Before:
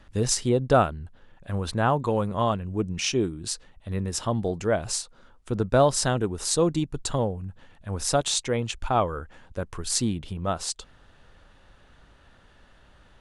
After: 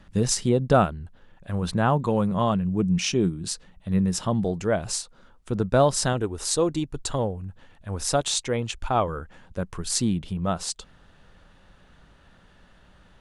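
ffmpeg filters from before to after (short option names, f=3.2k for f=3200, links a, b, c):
-af "asetnsamples=n=441:p=0,asendcmd='0.84 equalizer g 3.5;1.62 equalizer g 12.5;4.45 equalizer g 5;6.13 equalizer g -6.5;7.24 equalizer g -0.5;9.07 equalizer g 7.5',equalizer=f=180:t=o:w=0.41:g=12"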